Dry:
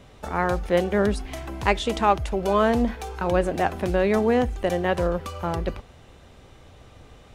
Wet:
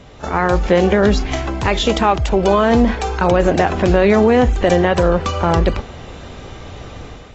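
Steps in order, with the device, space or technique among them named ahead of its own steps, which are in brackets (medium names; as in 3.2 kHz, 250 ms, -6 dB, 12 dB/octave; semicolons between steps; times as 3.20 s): low-bitrate web radio (level rider gain up to 7.5 dB; peak limiter -11 dBFS, peak gain reduction 9.5 dB; trim +7.5 dB; AAC 24 kbps 22.05 kHz)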